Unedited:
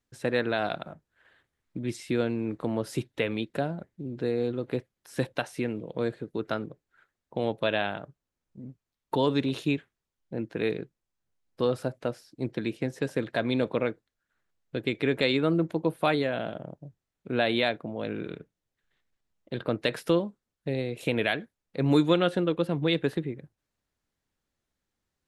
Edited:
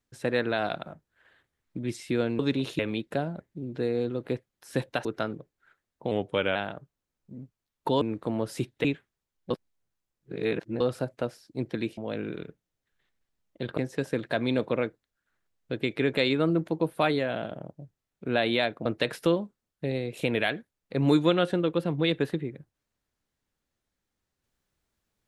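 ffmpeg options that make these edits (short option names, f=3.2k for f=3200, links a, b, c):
-filter_complex "[0:a]asplit=13[a][b][c][d][e][f][g][h][i][j][k][l][m];[a]atrim=end=2.392[n];[b]atrim=start=9.278:end=9.682[o];[c]atrim=start=3.218:end=5.482[p];[d]atrim=start=6.358:end=7.424[q];[e]atrim=start=7.42:end=7.82,asetpts=PTS-STARTPTS,asetrate=39690,aresample=44100[r];[f]atrim=start=7.816:end=9.282[s];[g]atrim=start=2.388:end=3.222[t];[h]atrim=start=9.678:end=10.342[u];[i]atrim=start=10.338:end=11.642,asetpts=PTS-STARTPTS,areverse[v];[j]atrim=start=11.638:end=12.812[w];[k]atrim=start=17.888:end=19.692[x];[l]atrim=start=12.808:end=17.892[y];[m]atrim=start=19.688[z];[n][o]acrossfade=d=0.004:c1=hsin:c2=hsin[aa];[aa][p]acrossfade=d=0.004:c1=hsin:c2=hsin[ab];[ab][q]acrossfade=d=0.004:c1=hsin:c2=hsin[ac];[ac][r]acrossfade=d=0.004:c1=hsin:c2=hsin[ad];[ad][s]acrossfade=d=0.004:c1=hsin:c2=hsin[ae];[ae][t]acrossfade=d=0.004:c1=hsin:c2=hsin[af];[af][u]acrossfade=d=0.004:c1=hsin:c2=hsin[ag];[ag][v]acrossfade=d=0.004:c1=hsin:c2=hsin[ah];[ah][w]acrossfade=d=0.004:c1=hsin:c2=hsin[ai];[ai][x]acrossfade=d=0.004:c1=hsin:c2=hsin[aj];[aj][y]acrossfade=d=0.004:c1=hsin:c2=hsin[ak];[ak][z]acrossfade=d=0.004:c1=hsin:c2=hsin"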